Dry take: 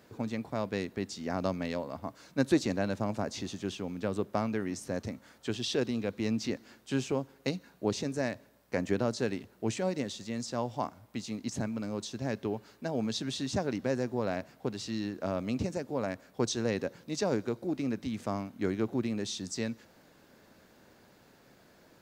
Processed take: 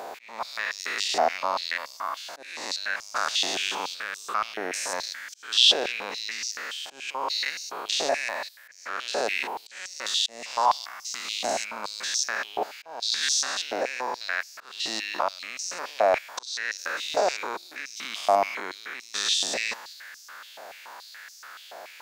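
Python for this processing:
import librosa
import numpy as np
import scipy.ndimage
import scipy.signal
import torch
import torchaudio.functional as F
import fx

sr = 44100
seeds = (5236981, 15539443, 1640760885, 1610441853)

p1 = fx.spec_steps(x, sr, hold_ms=200)
p2 = fx.over_compress(p1, sr, threshold_db=-39.0, ratio=-0.5)
p3 = p1 + (p2 * librosa.db_to_amplitude(2.0))
p4 = fx.auto_swell(p3, sr, attack_ms=370.0)
p5 = fx.filter_held_highpass(p4, sr, hz=7.0, low_hz=710.0, high_hz=5700.0)
y = p5 * librosa.db_to_amplitude(8.0)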